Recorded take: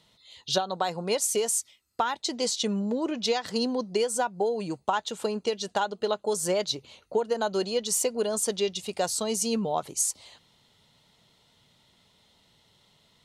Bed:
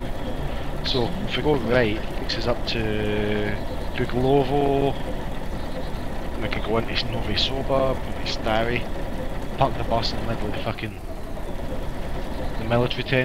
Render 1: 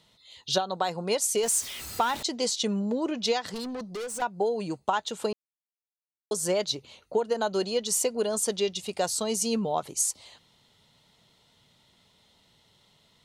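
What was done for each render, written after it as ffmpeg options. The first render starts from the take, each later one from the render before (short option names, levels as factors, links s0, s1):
-filter_complex "[0:a]asettb=1/sr,asplit=3[s0][s1][s2];[s0]atrim=end=1.434[s3];[s1]atrim=start=1.43:end=2.23,asetpts=PTS-STARTPTS,afade=t=in:d=0.004:c=qsin,afade=t=out:st=0.796:d=0.004:c=qsin,aeval=exprs='val(0)+0.5*0.0224*sgn(val(0))':c=same[s4];[s2]atrim=start=2.226[s5];[s3][s4]acrossfade=d=0.004:c1=hsin:c2=qsin[s6];[s6][s5]acrossfade=d=0.004:c1=qsin:c2=hsin,asettb=1/sr,asplit=3[s7][s8][s9];[s7]atrim=end=3.544[s10];[s8]atrim=start=3.54:end=4.22,asetpts=PTS-STARTPTS,afade=t=in:d=0.004:c=qsin,afade=t=out:st=0.676:d=0.004:c=qsin,aeval=exprs='(tanh(39.8*val(0)+0.05)-tanh(0.05))/39.8':c=same[s11];[s9]atrim=start=4.216[s12];[s10][s11]acrossfade=d=0.004:c1=hsin:c2=qsin[s13];[s13][s12]acrossfade=d=0.004:c1=qsin:c2=hsin,asplit=3[s14][s15][s16];[s14]atrim=end=5.33,asetpts=PTS-STARTPTS,afade=t=out:st=5.326:d=0.004:c=hsin[s17];[s15]atrim=start=5.33:end=6.31,asetpts=PTS-STARTPTS,volume=0[s18];[s16]atrim=start=6.31,asetpts=PTS-STARTPTS,afade=t=in:d=0.004:c=hsin[s19];[s17][s18][s19]concat=n=3:v=0:a=1"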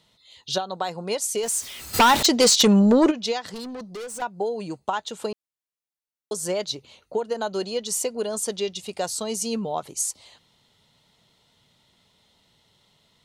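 -filter_complex "[0:a]asplit=3[s0][s1][s2];[s0]afade=t=out:st=1.93:d=0.02[s3];[s1]aeval=exprs='0.282*sin(PI/2*3.16*val(0)/0.282)':c=same,afade=t=in:st=1.93:d=0.02,afade=t=out:st=3.1:d=0.02[s4];[s2]afade=t=in:st=3.1:d=0.02[s5];[s3][s4][s5]amix=inputs=3:normalize=0"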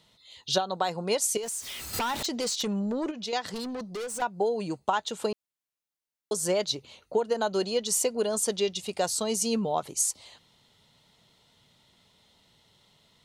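-filter_complex "[0:a]asettb=1/sr,asplit=3[s0][s1][s2];[s0]atrim=end=1.374[s3];[s1]atrim=start=1.37:end=3.33,asetpts=PTS-STARTPTS,afade=t=in:d=0.004:c=qsin,afade=t=out:st=1.956:d=0.004:c=qsin,acompressor=threshold=0.0178:ratio=2.5:attack=3.2:release=140:knee=1:detection=peak[s4];[s2]atrim=start=3.326[s5];[s3][s4]acrossfade=d=0.004:c1=hsin:c2=qsin[s6];[s6][s5]acrossfade=d=0.004:c1=qsin:c2=hsin"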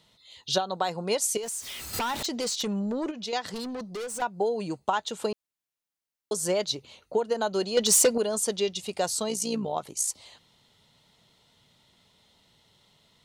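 -filter_complex "[0:a]asettb=1/sr,asplit=3[s0][s1][s2];[s0]atrim=end=7.774[s3];[s1]atrim=start=7.77:end=8.18,asetpts=PTS-STARTPTS,afade=t=in:d=0.004:c=qsin,afade=t=out:st=0.406:d=0.004:c=qsin,aeval=exprs='0.188*sin(PI/2*1.78*val(0)/0.188)':c=same[s4];[s2]atrim=start=8.176[s5];[s3][s4]acrossfade=d=0.004:c1=hsin:c2=qsin[s6];[s6][s5]acrossfade=d=0.004:c1=qsin:c2=hsin,asplit=3[s7][s8][s9];[s7]afade=t=out:st=9.28:d=0.02[s10];[s8]tremolo=f=58:d=0.519,afade=t=in:st=9.28:d=0.02,afade=t=out:st=10.07:d=0.02[s11];[s9]afade=t=in:st=10.07:d=0.02[s12];[s10][s11][s12]amix=inputs=3:normalize=0"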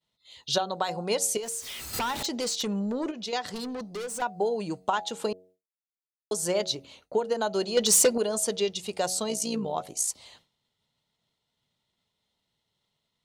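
-af "bandreject=f=92.18:t=h:w=4,bandreject=f=184.36:t=h:w=4,bandreject=f=276.54:t=h:w=4,bandreject=f=368.72:t=h:w=4,bandreject=f=460.9:t=h:w=4,bandreject=f=553.08:t=h:w=4,bandreject=f=645.26:t=h:w=4,bandreject=f=737.44:t=h:w=4,bandreject=f=829.62:t=h:w=4,agate=range=0.0224:threshold=0.00251:ratio=3:detection=peak"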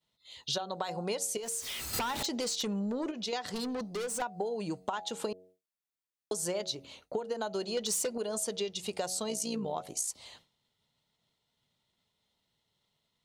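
-af "acompressor=threshold=0.0282:ratio=6"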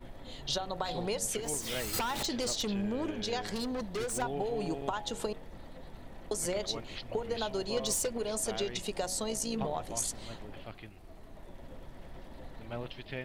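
-filter_complex "[1:a]volume=0.112[s0];[0:a][s0]amix=inputs=2:normalize=0"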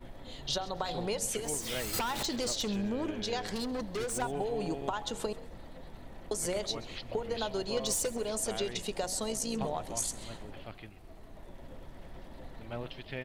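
-filter_complex "[0:a]asplit=4[s0][s1][s2][s3];[s1]adelay=133,afreqshift=36,volume=0.112[s4];[s2]adelay=266,afreqshift=72,volume=0.0359[s5];[s3]adelay=399,afreqshift=108,volume=0.0115[s6];[s0][s4][s5][s6]amix=inputs=4:normalize=0"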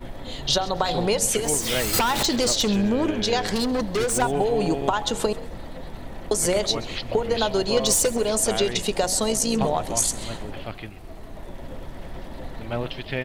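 -af "volume=3.76"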